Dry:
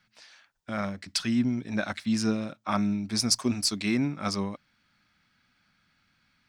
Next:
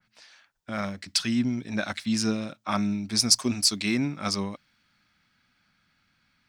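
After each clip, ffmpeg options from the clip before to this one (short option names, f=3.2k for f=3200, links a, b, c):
-af "adynamicequalizer=threshold=0.00631:dfrequency=2200:dqfactor=0.7:tfrequency=2200:tqfactor=0.7:attack=5:release=100:ratio=0.375:range=2.5:mode=boostabove:tftype=highshelf"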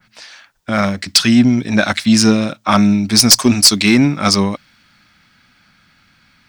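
-af "aeval=exprs='0.631*sin(PI/2*2.82*val(0)/0.631)':c=same,volume=2.5dB"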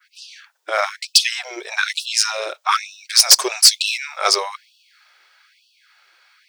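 -af "afftfilt=real='re*gte(b*sr/1024,340*pow(2600/340,0.5+0.5*sin(2*PI*1.1*pts/sr)))':imag='im*gte(b*sr/1024,340*pow(2600/340,0.5+0.5*sin(2*PI*1.1*pts/sr)))':win_size=1024:overlap=0.75,volume=-1dB"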